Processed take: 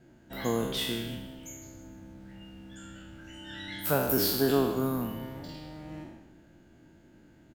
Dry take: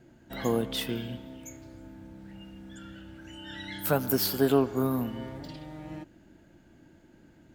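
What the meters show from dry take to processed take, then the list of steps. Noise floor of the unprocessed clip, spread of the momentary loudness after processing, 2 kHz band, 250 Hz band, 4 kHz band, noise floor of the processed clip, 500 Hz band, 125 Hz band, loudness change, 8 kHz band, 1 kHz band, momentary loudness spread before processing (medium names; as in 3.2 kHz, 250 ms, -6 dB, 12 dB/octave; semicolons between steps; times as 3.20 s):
-58 dBFS, 23 LU, +1.0 dB, -1.5 dB, +1.5 dB, -58 dBFS, -1.0 dB, -1.5 dB, 0.0 dB, +1.5 dB, -0.5 dB, 22 LU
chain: spectral sustain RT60 0.91 s; frequency-shifting echo 156 ms, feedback 42%, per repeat -81 Hz, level -15 dB; trim -3 dB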